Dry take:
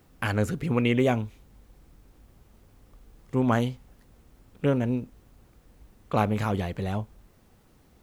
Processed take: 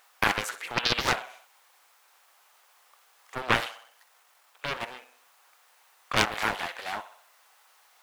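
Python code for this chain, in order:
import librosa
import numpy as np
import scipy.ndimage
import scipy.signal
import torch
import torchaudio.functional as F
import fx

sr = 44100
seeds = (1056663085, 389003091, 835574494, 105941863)

p1 = fx.halfwave_gain(x, sr, db=-3.0, at=(3.38, 4.71))
p2 = scipy.signal.sosfilt(scipy.signal.butter(4, 830.0, 'highpass', fs=sr, output='sos'), p1)
p3 = p2 + fx.echo_feedback(p2, sr, ms=63, feedback_pct=51, wet_db=-14, dry=0)
p4 = fx.doppler_dist(p3, sr, depth_ms=0.79)
y = p4 * librosa.db_to_amplitude(7.0)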